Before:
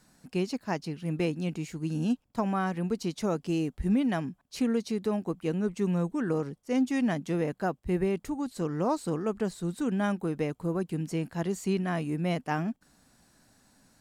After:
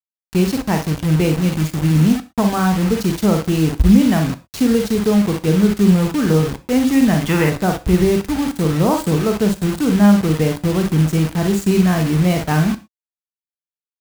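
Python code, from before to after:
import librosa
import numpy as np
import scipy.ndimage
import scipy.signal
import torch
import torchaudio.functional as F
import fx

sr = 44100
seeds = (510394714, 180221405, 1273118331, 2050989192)

p1 = x + fx.room_early_taps(x, sr, ms=(44, 59), db=(-7.0, -9.5), dry=0)
p2 = fx.spec_box(p1, sr, start_s=7.21, length_s=0.29, low_hz=800.0, high_hz=3600.0, gain_db=12)
p3 = fx.quant_dither(p2, sr, seeds[0], bits=6, dither='none')
p4 = fx.peak_eq(p3, sr, hz=60.0, db=13.5, octaves=2.6)
p5 = fx.rev_gated(p4, sr, seeds[1], gate_ms=140, shape='falling', drr_db=11.0)
y = p5 * 10.0 ** (8.5 / 20.0)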